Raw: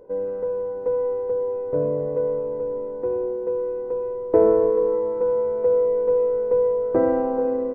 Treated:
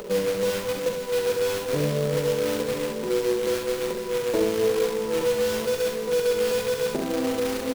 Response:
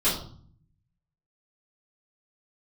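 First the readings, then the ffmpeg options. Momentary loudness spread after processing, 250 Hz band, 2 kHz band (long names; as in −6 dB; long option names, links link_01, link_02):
4 LU, 0.0 dB, can't be measured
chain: -filter_complex "[0:a]equalizer=frequency=190:width_type=o:width=1.2:gain=11,acrossover=split=91|610[link_01][link_02][link_03];[link_01]acompressor=threshold=-49dB:ratio=4[link_04];[link_02]acompressor=threshold=-28dB:ratio=4[link_05];[link_03]acompressor=threshold=-36dB:ratio=4[link_06];[link_04][link_05][link_06]amix=inputs=3:normalize=0,asplit=2[link_07][link_08];[link_08]alimiter=limit=-20.5dB:level=0:latency=1:release=256,volume=-2dB[link_09];[link_07][link_09]amix=inputs=2:normalize=0,acompressor=mode=upward:threshold=-29dB:ratio=2.5,flanger=delay=4.8:depth=5.3:regen=-5:speed=1:shape=sinusoidal,acrusher=bits=2:mode=log:mix=0:aa=0.000001,asplit=2[link_10][link_11];[link_11]aecho=0:1:43|68:0.376|0.562[link_12];[link_10][link_12]amix=inputs=2:normalize=0"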